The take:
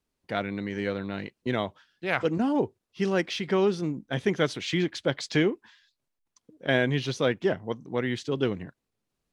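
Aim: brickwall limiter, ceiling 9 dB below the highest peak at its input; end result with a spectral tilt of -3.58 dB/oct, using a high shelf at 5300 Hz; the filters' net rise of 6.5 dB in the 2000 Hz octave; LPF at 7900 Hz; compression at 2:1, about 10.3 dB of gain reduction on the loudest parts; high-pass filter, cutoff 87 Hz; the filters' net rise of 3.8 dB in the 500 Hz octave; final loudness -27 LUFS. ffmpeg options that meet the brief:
-af "highpass=87,lowpass=7.9k,equalizer=f=500:t=o:g=4.5,equalizer=f=2k:t=o:g=7,highshelf=f=5.3k:g=6,acompressor=threshold=-35dB:ratio=2,volume=8.5dB,alimiter=limit=-14.5dB:level=0:latency=1"

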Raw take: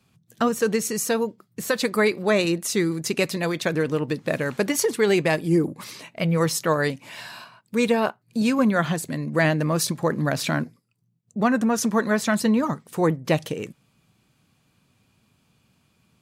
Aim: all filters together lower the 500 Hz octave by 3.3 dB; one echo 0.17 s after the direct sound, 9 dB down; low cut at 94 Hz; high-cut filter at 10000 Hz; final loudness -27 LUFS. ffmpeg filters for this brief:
-af "highpass=94,lowpass=10k,equalizer=f=500:t=o:g=-4,aecho=1:1:170:0.355,volume=-2.5dB"

